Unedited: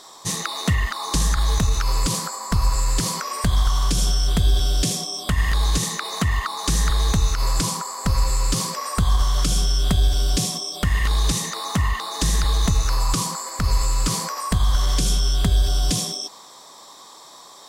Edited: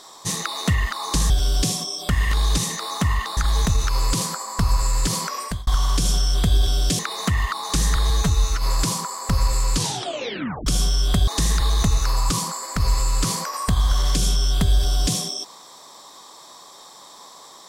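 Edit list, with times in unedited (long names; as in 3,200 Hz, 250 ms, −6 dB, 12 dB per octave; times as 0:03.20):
0:03.29–0:03.60: fade out
0:04.92–0:05.93: remove
0:07.04–0:07.39: time-stretch 1.5×
0:08.50: tape stop 0.93 s
0:10.04–0:12.11: move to 0:01.30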